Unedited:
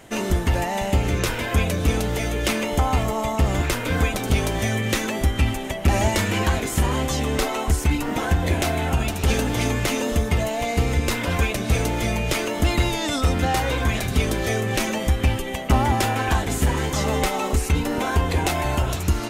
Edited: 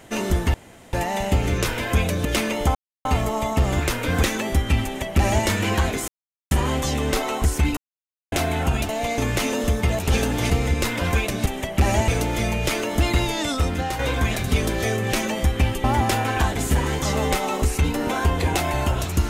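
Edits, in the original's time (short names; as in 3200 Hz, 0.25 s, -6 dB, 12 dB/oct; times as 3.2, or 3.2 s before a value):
0.54 insert room tone 0.39 s
1.86–2.37 cut
2.87 insert silence 0.30 s
4.05–4.92 cut
5.53–6.15 copy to 11.72
6.77 insert silence 0.43 s
8.03–8.58 mute
9.15–9.66 swap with 10.47–10.76
13.06–13.63 fade out, to -6.5 dB
15.48–15.75 cut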